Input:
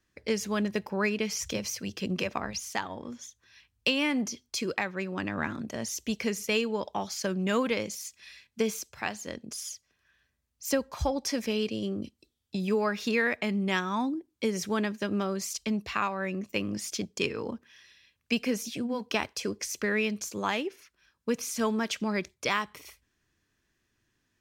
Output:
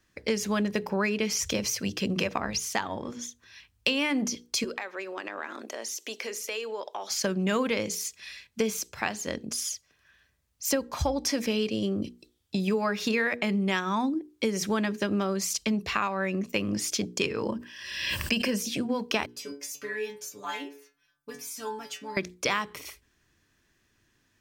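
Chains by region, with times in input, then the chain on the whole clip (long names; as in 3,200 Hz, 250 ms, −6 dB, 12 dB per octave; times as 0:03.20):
0:04.64–0:07.10: high-pass filter 360 Hz 24 dB per octave + downward compressor 3 to 1, threshold −40 dBFS
0:17.43–0:18.60: EQ curve with evenly spaced ripples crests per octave 1.3, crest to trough 8 dB + background raised ahead of every attack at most 49 dB per second
0:19.26–0:22.17: high-shelf EQ 11,000 Hz +11.5 dB + stiff-string resonator 140 Hz, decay 0.39 s, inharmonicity 0.002
whole clip: mains-hum notches 60/120/180/240/300/360/420/480 Hz; downward compressor 2.5 to 1, threshold −32 dBFS; level +6.5 dB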